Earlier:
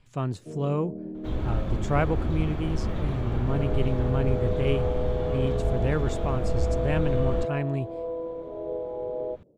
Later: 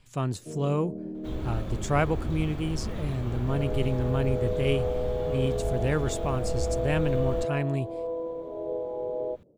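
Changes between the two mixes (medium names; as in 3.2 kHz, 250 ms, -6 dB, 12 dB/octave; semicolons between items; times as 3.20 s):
second sound -5.0 dB; master: remove low-pass 2.8 kHz 6 dB/octave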